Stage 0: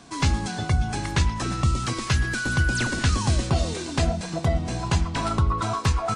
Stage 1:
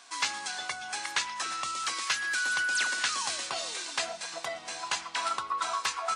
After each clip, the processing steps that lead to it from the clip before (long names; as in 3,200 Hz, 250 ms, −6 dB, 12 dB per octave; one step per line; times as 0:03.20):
high-pass filter 1,100 Hz 12 dB per octave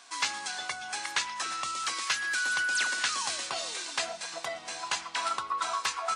no processing that can be heard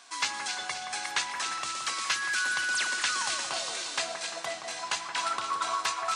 echo with a time of its own for lows and highs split 2,100 Hz, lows 173 ms, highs 263 ms, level −7 dB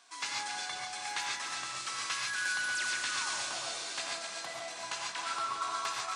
reverb whose tail is shaped and stops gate 160 ms rising, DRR −1.5 dB
level −8.5 dB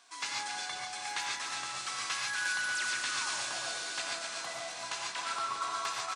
single-tap delay 1,189 ms −10.5 dB